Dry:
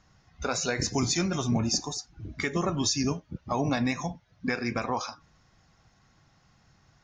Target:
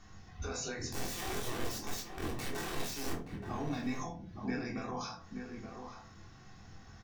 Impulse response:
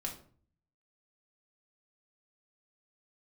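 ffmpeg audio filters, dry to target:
-filter_complex "[0:a]acompressor=threshold=-42dB:ratio=4,alimiter=level_in=12.5dB:limit=-24dB:level=0:latency=1:release=10,volume=-12.5dB,asettb=1/sr,asplit=3[link_01][link_02][link_03];[link_01]atrim=end=0.914[link_04];[link_02]atrim=start=0.91:end=3.13,asetpts=PTS-STARTPTS,afade=type=in:duration=0.004:curve=qsin,afade=type=out:start_time=2.216:duration=0.004:curve=qsin,aeval=exprs='(mod(106*val(0)+1,2)-1)/106':channel_layout=same[link_05];[link_03]atrim=start=3.126[link_06];[link_04][link_05]acrossfade=duration=0.004:curve1=hsin:curve2=qsin[link_07];[link_07][link_06]acrossfade=duration=0.004:curve1=qsin:curve2=hsin,asplit=2[link_08][link_09];[link_09]adelay=24,volume=-7dB[link_10];[link_08][link_10]amix=inputs=2:normalize=0,asplit=2[link_11][link_12];[link_12]adelay=874.6,volume=-6dB,highshelf=frequency=4000:gain=-19.7[link_13];[link_11][link_13]amix=inputs=2:normalize=0[link_14];[1:a]atrim=start_sample=2205,asetrate=61740,aresample=44100[link_15];[link_14][link_15]afir=irnorm=-1:irlink=0,volume=7.5dB"

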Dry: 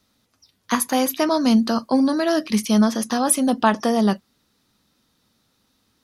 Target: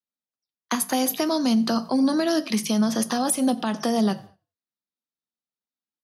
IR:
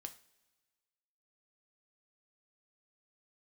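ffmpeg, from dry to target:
-filter_complex "[0:a]agate=range=-36dB:threshold=-35dB:ratio=16:detection=peak,asplit=2[link_01][link_02];[link_02]equalizer=frequency=730:width_type=o:width=0.27:gain=7[link_03];[1:a]atrim=start_sample=2205,afade=type=out:start_time=0.28:duration=0.01,atrim=end_sample=12789[link_04];[link_03][link_04]afir=irnorm=-1:irlink=0,volume=-0.5dB[link_05];[link_01][link_05]amix=inputs=2:normalize=0,acrossover=split=310|3000[link_06][link_07][link_08];[link_07]acompressor=threshold=-21dB:ratio=6[link_09];[link_06][link_09][link_08]amix=inputs=3:normalize=0,alimiter=limit=-10.5dB:level=0:latency=1:release=165,highpass=190,asplit=3[link_10][link_11][link_12];[link_11]adelay=90,afreqshift=-50,volume=-23dB[link_13];[link_12]adelay=180,afreqshift=-100,volume=-33.5dB[link_14];[link_10][link_13][link_14]amix=inputs=3:normalize=0,volume=-1.5dB"

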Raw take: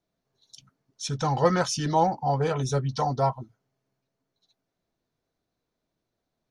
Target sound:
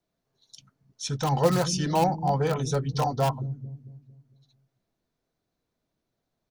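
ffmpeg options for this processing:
ffmpeg -i in.wav -filter_complex "[0:a]acrossover=split=280|1100|2600[link_01][link_02][link_03][link_04];[link_01]aecho=1:1:226|452|678|904|1130|1356:0.708|0.311|0.137|0.0603|0.0265|0.0117[link_05];[link_03]aeval=exprs='(mod(35.5*val(0)+1,2)-1)/35.5':channel_layout=same[link_06];[link_05][link_02][link_06][link_04]amix=inputs=4:normalize=0" out.wav

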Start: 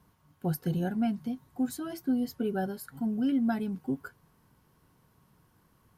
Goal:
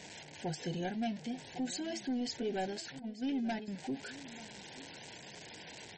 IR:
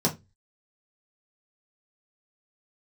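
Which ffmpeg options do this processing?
-filter_complex "[0:a]aeval=exprs='val(0)+0.5*0.00841*sgn(val(0))':channel_layout=same,highpass=frequency=830:poles=1,asettb=1/sr,asplit=3[link_01][link_02][link_03];[link_01]atrim=end=2.994[link_04];[link_02]atrim=start=2.99:end=3.68,asetpts=PTS-STARTPTS,afade=type=in:duration=0.004:curve=qsin,afade=type=out:start_time=0.686:duration=0.004:curve=qsin,agate=range=-13dB:threshold=-38dB:ratio=16:detection=peak[link_05];[link_03]atrim=start=3.676[link_06];[link_04][link_05]acrossfade=duration=0.004:curve1=hsin:curve2=qsin[link_07];[link_07][link_06]acrossfade=duration=0.004:curve1=qsin:curve2=hsin,anlmdn=0.000398,asoftclip=type=tanh:threshold=-35dB,asuperstop=centerf=1200:order=4:qfactor=1.5,asplit=2[link_08][link_09];[link_09]aecho=0:1:886:0.141[link_10];[link_08][link_10]amix=inputs=2:normalize=0,aresample=22050,aresample=44100,volume=5.5dB" -ar 48000 -c:a libmp3lame -b:a 32k

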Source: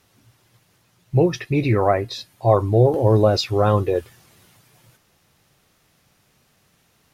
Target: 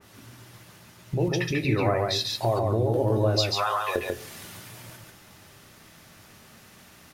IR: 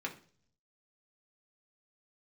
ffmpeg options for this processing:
-filter_complex "[0:a]asettb=1/sr,asplit=3[link_01][link_02][link_03];[link_01]atrim=end=3.394[link_04];[link_02]atrim=start=3.39:end=3.96,asetpts=PTS-STARTPTS,afade=type=in:duration=0.004:curve=qsin,afade=type=out:start_time=0.566:duration=0.004:curve=qsin,highpass=frequency=810:width=0.5412,highpass=frequency=810:width=1.3066[link_05];[link_03]atrim=start=3.956[link_06];[link_04][link_05]acrossfade=duration=0.004:curve1=hsin:curve2=qsin[link_07];[link_07][link_06]acrossfade=duration=0.004:curve1=qsin:curve2=hsin,acompressor=threshold=-34dB:ratio=4,aecho=1:1:142:0.708,asplit=2[link_08][link_09];[1:a]atrim=start_sample=2205,asetrate=34398,aresample=44100[link_10];[link_09][link_10]afir=irnorm=-1:irlink=0,volume=-6.5dB[link_11];[link_08][link_11]amix=inputs=2:normalize=0,adynamicequalizer=threshold=0.00447:dfrequency=2100:dqfactor=0.7:tfrequency=2100:tqfactor=0.7:attack=5:release=100:ratio=0.375:range=2.5:mode=boostabove:tftype=highshelf,volume=5.5dB"

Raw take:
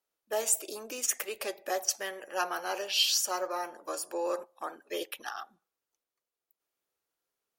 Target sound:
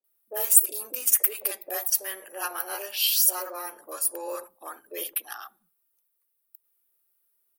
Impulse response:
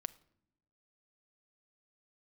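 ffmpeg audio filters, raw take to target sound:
-filter_complex "[0:a]acrossover=split=250[link_01][link_02];[link_01]aeval=exprs='(tanh(3160*val(0)+0.15)-tanh(0.15))/3160':channel_layout=same[link_03];[link_02]aexciter=amount=6.9:drive=6.1:freq=9200[link_04];[link_03][link_04]amix=inputs=2:normalize=0,acrossover=split=210|690[link_05][link_06][link_07];[link_07]adelay=40[link_08];[link_05]adelay=100[link_09];[link_09][link_06][link_08]amix=inputs=3:normalize=0"

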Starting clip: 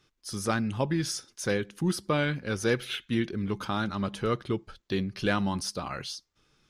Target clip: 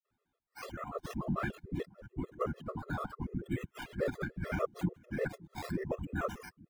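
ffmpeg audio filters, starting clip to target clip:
ffmpeg -i in.wav -filter_complex "[0:a]areverse,afftfilt=real='hypot(re,im)*cos(2*PI*random(0))':imag='hypot(re,im)*sin(2*PI*random(1))':win_size=512:overlap=0.75,asplit=2[link_01][link_02];[link_02]adelay=544,lowpass=frequency=2100:poles=1,volume=-21.5dB,asplit=2[link_03][link_04];[link_04]adelay=544,lowpass=frequency=2100:poles=1,volume=0.38,asplit=2[link_05][link_06];[link_06]adelay=544,lowpass=frequency=2100:poles=1,volume=0.38[link_07];[link_01][link_03][link_05][link_07]amix=inputs=4:normalize=0,asplit=2[link_08][link_09];[link_09]acompressor=threshold=-44dB:ratio=6,volume=-0.5dB[link_10];[link_08][link_10]amix=inputs=2:normalize=0,afftdn=noise_reduction=12:noise_floor=-43,adynamicequalizer=threshold=0.00398:dfrequency=320:dqfactor=2.1:tfrequency=320:tqfactor=2.1:attack=5:release=100:ratio=0.375:range=2:mode=cutabove:tftype=bell,acrossover=split=210|2700[link_11][link_12][link_13];[link_13]acrusher=samples=12:mix=1:aa=0.000001:lfo=1:lforange=7.2:lforate=0.77[link_14];[link_11][link_12][link_14]amix=inputs=3:normalize=0,afftfilt=real='re*gt(sin(2*PI*6.8*pts/sr)*(1-2*mod(floor(b*sr/1024/350),2)),0)':imag='im*gt(sin(2*PI*6.8*pts/sr)*(1-2*mod(floor(b*sr/1024/350),2)),0)':win_size=1024:overlap=0.75" out.wav

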